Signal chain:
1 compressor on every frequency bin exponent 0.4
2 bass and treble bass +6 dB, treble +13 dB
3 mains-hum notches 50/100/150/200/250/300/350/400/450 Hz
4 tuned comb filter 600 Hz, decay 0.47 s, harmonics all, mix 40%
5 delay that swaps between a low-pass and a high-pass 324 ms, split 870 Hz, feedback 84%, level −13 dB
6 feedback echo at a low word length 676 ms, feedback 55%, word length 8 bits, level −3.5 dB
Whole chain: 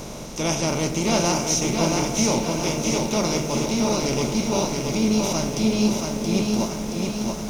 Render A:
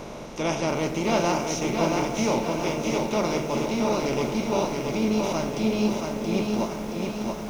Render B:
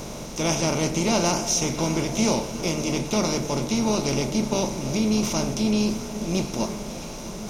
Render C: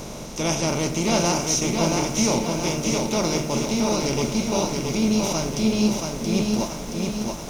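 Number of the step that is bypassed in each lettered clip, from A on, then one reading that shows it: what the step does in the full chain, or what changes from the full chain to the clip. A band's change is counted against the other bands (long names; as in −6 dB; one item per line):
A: 2, 8 kHz band −8.5 dB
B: 6, change in momentary loudness spread +2 LU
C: 5, change in momentary loudness spread +1 LU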